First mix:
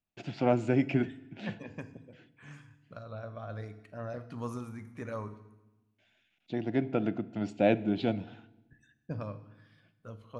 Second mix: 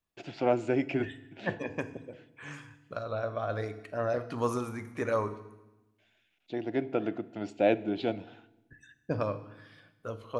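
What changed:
second voice +9.5 dB; master: add resonant low shelf 270 Hz -6 dB, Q 1.5

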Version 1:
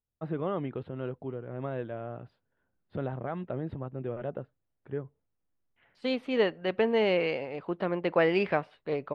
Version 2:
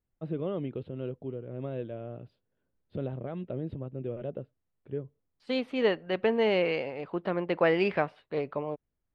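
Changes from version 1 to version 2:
first voice: add high-order bell 1.2 kHz -9.5 dB; second voice: entry -0.55 s

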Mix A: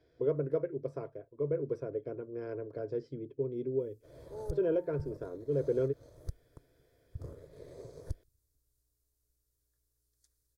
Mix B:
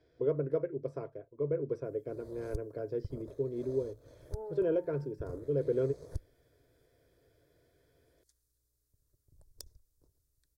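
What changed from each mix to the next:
background: entry -1.95 s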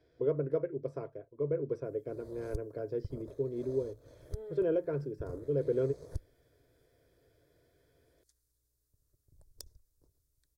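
second voice: remove resonant low-pass 890 Hz, resonance Q 6.5

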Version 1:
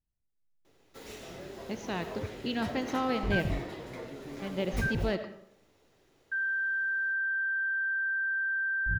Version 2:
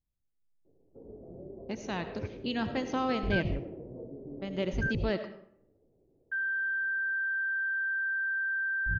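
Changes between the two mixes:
first sound: add inverse Chebyshev low-pass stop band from 1.9 kHz, stop band 60 dB; second sound: send off

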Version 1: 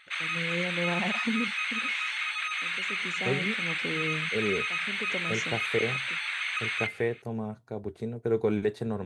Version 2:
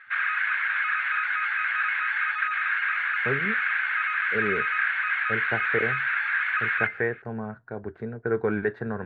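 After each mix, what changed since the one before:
first voice: muted; master: add resonant low-pass 1.6 kHz, resonance Q 6.9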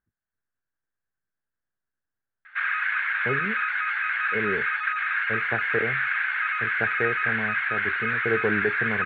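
background: entry +2.45 s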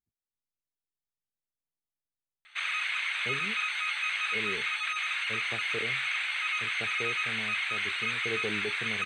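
speech -9.5 dB; master: remove resonant low-pass 1.6 kHz, resonance Q 6.9

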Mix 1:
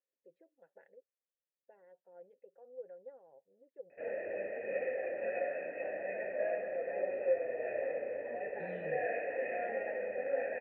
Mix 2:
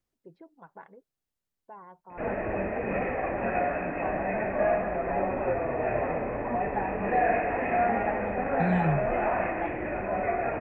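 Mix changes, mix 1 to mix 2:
background: entry -1.80 s; master: remove vowel filter e

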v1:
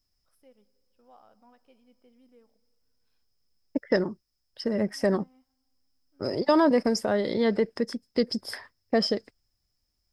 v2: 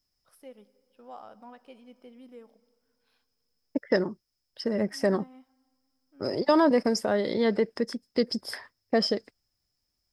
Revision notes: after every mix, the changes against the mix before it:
first voice +11.0 dB; master: add bass shelf 84 Hz -8.5 dB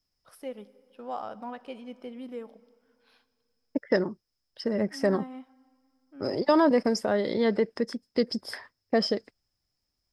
first voice +9.5 dB; master: add treble shelf 6.9 kHz -5.5 dB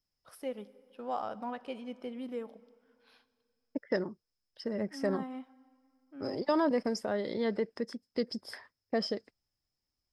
second voice -7.0 dB

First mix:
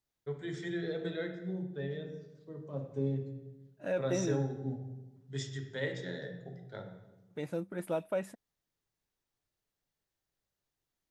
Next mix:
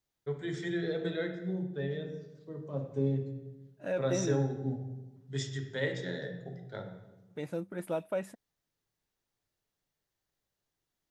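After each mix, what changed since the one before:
first voice +3.0 dB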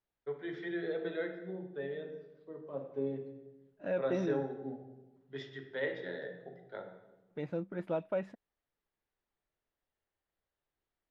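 first voice: add band-pass 340–3900 Hz; master: add distance through air 230 m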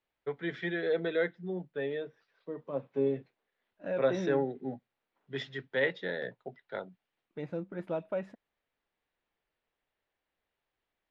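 first voice +9.5 dB; reverb: off

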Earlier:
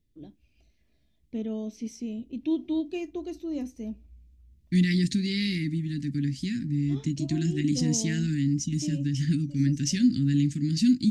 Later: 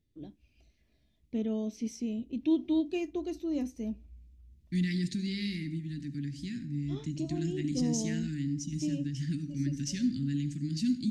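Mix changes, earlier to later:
second voice -11.5 dB; reverb: on, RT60 0.50 s

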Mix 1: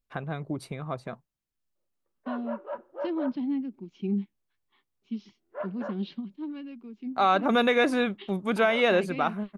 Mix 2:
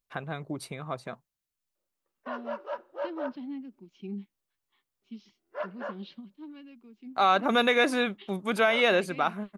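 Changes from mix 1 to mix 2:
second voice -6.0 dB; background: remove distance through air 380 m; master: add tilt EQ +1.5 dB/octave

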